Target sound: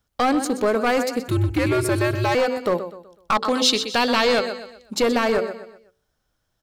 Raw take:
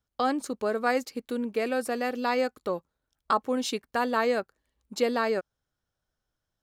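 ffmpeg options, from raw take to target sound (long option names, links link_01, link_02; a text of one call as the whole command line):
ffmpeg -i in.wav -filter_complex "[0:a]bandreject=frequency=63.45:width_type=h:width=4,bandreject=frequency=126.9:width_type=h:width=4,bandreject=frequency=190.35:width_type=h:width=4,bandreject=frequency=253.8:width_type=h:width=4,bandreject=frequency=317.25:width_type=h:width=4,bandreject=frequency=380.7:width_type=h:width=4,bandreject=frequency=444.15:width_type=h:width=4,bandreject=frequency=507.6:width_type=h:width=4,bandreject=frequency=571.05:width_type=h:width=4,asplit=2[link_01][link_02];[link_02]aecho=0:1:125|250|375|500:0.224|0.0851|0.0323|0.0123[link_03];[link_01][link_03]amix=inputs=2:normalize=0,aeval=exprs='clip(val(0),-1,0.0562)':channel_layout=same,asettb=1/sr,asplit=3[link_04][link_05][link_06];[link_04]atrim=end=1.284[link_07];[link_05]atrim=start=1.28:end=2.35,asetpts=PTS-STARTPTS,afade=type=in:duration=0.004:curve=qsin,afade=type=out:start_time=1.066:duration=0.004:curve=qsin,afreqshift=-140[link_08];[link_06]atrim=start=2.346[link_09];[link_07][link_08]acrossfade=duration=0.004:curve1=hsin:curve2=qsin[link_10];[link_10][link_09]acrossfade=duration=0.004:curve1=qsin:curve2=hsin,asettb=1/sr,asplit=3[link_11][link_12][link_13];[link_11]atrim=end=3.354[link_14];[link_12]atrim=start=3.35:end=4.96,asetpts=PTS-STARTPTS,afade=type=in:duration=0.004:curve=qsin,afade=type=out:start_time=1.606:duration=0.004:curve=qsin,equalizer=frequency=4200:width_type=o:width=1.3:gain=11.5[link_15];[link_13]atrim=start=4.956[link_16];[link_14][link_15]acrossfade=duration=0.004:curve1=hsin:curve2=qsin[link_17];[link_17][link_16]acrossfade=duration=0.004:curve1=qsin:curve2=hsin,asplit=2[link_18][link_19];[link_19]alimiter=limit=-23dB:level=0:latency=1:release=81,volume=2.5dB[link_20];[link_18][link_20]amix=inputs=2:normalize=0,volume=3dB" out.wav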